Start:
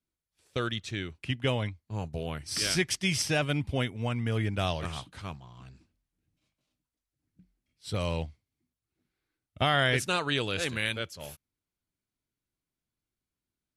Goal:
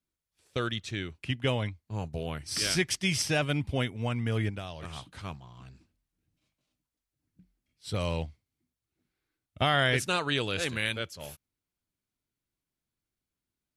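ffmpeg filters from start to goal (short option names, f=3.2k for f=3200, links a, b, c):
-filter_complex "[0:a]asettb=1/sr,asplit=3[a][b][c];[a]atrim=end=4.494[d];[b]atrim=start=4.49:end=5.12,asetpts=PTS-STARTPTS,afade=t=in:d=0.004:c=qsin,afade=t=out:st=0.626:d=0.004:c=qsin,acompressor=threshold=-35dB:ratio=10[e];[c]atrim=start=5.116[f];[d][e]acrossfade=d=0.004:c1=hsin:c2=qsin[g];[g][f]acrossfade=d=0.004:c1=qsin:c2=hsin"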